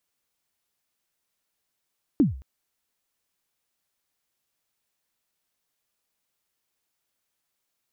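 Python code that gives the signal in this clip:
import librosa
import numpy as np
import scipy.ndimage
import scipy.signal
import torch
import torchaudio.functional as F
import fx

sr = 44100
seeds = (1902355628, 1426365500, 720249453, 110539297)

y = fx.drum_kick(sr, seeds[0], length_s=0.22, level_db=-12, start_hz=330.0, end_hz=65.0, sweep_ms=147.0, decay_s=0.43, click=False)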